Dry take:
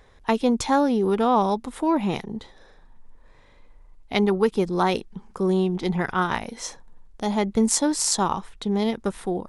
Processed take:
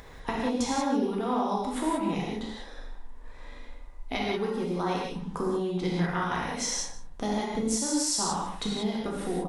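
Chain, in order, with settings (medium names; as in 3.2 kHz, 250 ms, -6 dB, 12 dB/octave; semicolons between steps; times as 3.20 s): dynamic bell 5.8 kHz, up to +4 dB, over -45 dBFS, Q 2.1; compression 10:1, threshold -32 dBFS, peak gain reduction 17.5 dB; delay 149 ms -17.5 dB; upward compressor, threshold -48 dBFS; 2.22–4.27 s: peaking EQ 160 Hz -14 dB 0.46 oct; gated-style reverb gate 210 ms flat, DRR -4.5 dB; trim +1.5 dB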